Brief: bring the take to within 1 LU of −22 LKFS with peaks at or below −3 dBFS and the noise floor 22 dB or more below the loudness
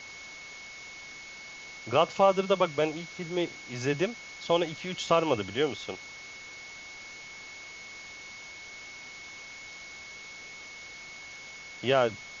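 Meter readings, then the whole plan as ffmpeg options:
interfering tone 2,200 Hz; level of the tone −44 dBFS; background noise floor −45 dBFS; target noise floor −51 dBFS; integrated loudness −28.5 LKFS; sample peak −11.0 dBFS; target loudness −22.0 LKFS
→ -af "bandreject=frequency=2200:width=30"
-af "afftdn=noise_reduction=6:noise_floor=-45"
-af "volume=6.5dB"

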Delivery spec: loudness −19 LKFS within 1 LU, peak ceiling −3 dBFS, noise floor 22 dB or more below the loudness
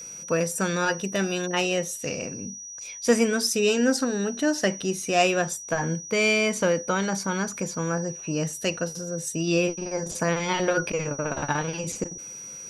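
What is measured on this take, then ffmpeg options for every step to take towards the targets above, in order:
interfering tone 5,800 Hz; level of the tone −37 dBFS; integrated loudness −25.5 LKFS; sample peak −8.5 dBFS; target loudness −19.0 LKFS
→ -af "bandreject=frequency=5800:width=30"
-af "volume=6.5dB,alimiter=limit=-3dB:level=0:latency=1"

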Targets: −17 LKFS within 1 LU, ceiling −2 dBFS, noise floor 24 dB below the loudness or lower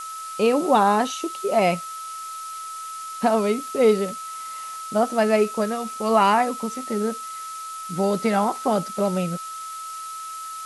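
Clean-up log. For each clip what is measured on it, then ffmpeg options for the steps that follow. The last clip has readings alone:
interfering tone 1,300 Hz; level of the tone −32 dBFS; background noise floor −34 dBFS; target noise floor −48 dBFS; integrated loudness −23.5 LKFS; sample peak −6.0 dBFS; target loudness −17.0 LKFS
→ -af "bandreject=frequency=1300:width=30"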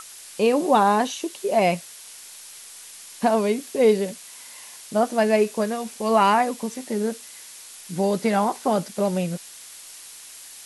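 interfering tone none found; background noise floor −43 dBFS; target noise floor −47 dBFS
→ -af "afftdn=noise_reduction=6:noise_floor=-43"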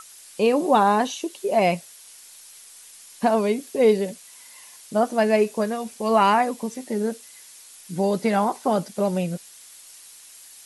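background noise floor −47 dBFS; integrated loudness −22.5 LKFS; sample peak −6.0 dBFS; target loudness −17.0 LKFS
→ -af "volume=5.5dB,alimiter=limit=-2dB:level=0:latency=1"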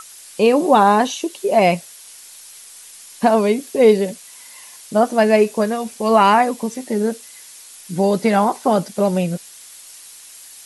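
integrated loudness −17.0 LKFS; sample peak −2.0 dBFS; background noise floor −41 dBFS

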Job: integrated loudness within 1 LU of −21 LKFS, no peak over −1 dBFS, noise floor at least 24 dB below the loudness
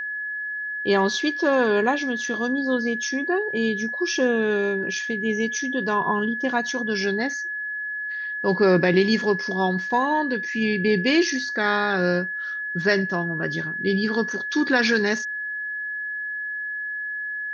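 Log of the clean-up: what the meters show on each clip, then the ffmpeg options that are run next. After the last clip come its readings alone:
interfering tone 1,700 Hz; level of the tone −27 dBFS; integrated loudness −23.0 LKFS; sample peak −6.5 dBFS; target loudness −21.0 LKFS
→ -af "bandreject=frequency=1700:width=30"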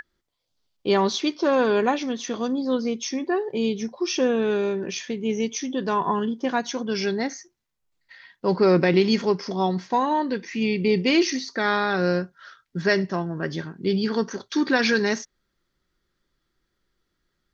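interfering tone none found; integrated loudness −24.0 LKFS; sample peak −8.0 dBFS; target loudness −21.0 LKFS
→ -af "volume=3dB"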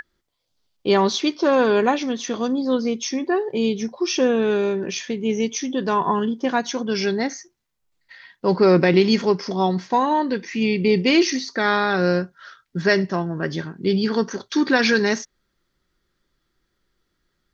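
integrated loudness −21.0 LKFS; sample peak −5.0 dBFS; background noise floor −74 dBFS

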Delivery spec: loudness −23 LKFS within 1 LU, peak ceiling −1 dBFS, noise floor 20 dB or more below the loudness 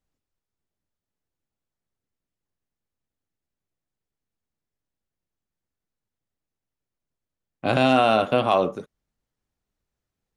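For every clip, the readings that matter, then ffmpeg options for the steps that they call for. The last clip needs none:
integrated loudness −21.0 LKFS; sample peak −6.5 dBFS; target loudness −23.0 LKFS
→ -af "volume=-2dB"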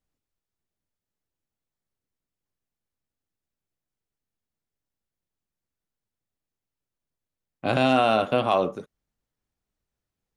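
integrated loudness −23.0 LKFS; sample peak −8.5 dBFS; background noise floor −89 dBFS

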